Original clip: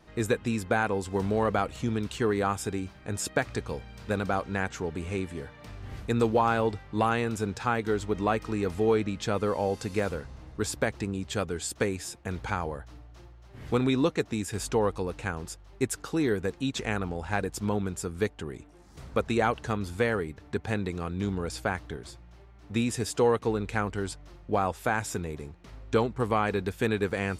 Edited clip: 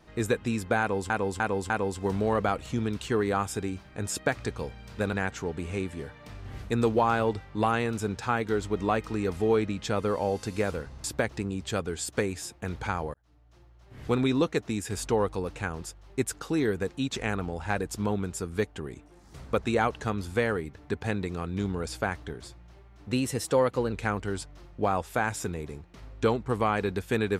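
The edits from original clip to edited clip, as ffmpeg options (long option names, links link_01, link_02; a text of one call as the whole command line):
ffmpeg -i in.wav -filter_complex "[0:a]asplit=9[link_01][link_02][link_03][link_04][link_05][link_06][link_07][link_08][link_09];[link_01]atrim=end=1.102[link_10];[link_02]atrim=start=0.798:end=1.102[link_11];[link_03]atrim=start=0.798:end=1.102[link_12];[link_04]atrim=start=0.798:end=4.232[link_13];[link_05]atrim=start=4.508:end=10.422[link_14];[link_06]atrim=start=10.668:end=12.77,asetpts=PTS-STARTPTS,afade=type=out:start_time=2.098:duration=0.004:curve=hsin[link_15];[link_07]atrim=start=12.77:end=22.754,asetpts=PTS-STARTPTS,afade=type=in:duration=1.03[link_16];[link_08]atrim=start=22.75:end=23.63,asetpts=PTS-STARTPTS,asetrate=48069,aresample=44100[link_17];[link_09]atrim=start=23.626[link_18];[link_10][link_11]acrossfade=duration=0.004:curve1=hsin:curve2=hsin[link_19];[link_19][link_12]acrossfade=duration=0.004:curve1=hsin:curve2=hsin[link_20];[link_20][link_13]acrossfade=duration=0.004:curve1=hsin:curve2=hsin[link_21];[link_21][link_14]acrossfade=duration=0.004:curve1=hsin:curve2=hsin[link_22];[link_15][link_16]concat=n=2:v=0:a=1[link_23];[link_22][link_23]acrossfade=duration=0.004:curve1=hsin:curve2=hsin[link_24];[link_24][link_17]acrossfade=duration=0.004:curve1=hsin:curve2=hsin[link_25];[link_25][link_18]acrossfade=duration=0.004:curve1=hsin:curve2=hsin" out.wav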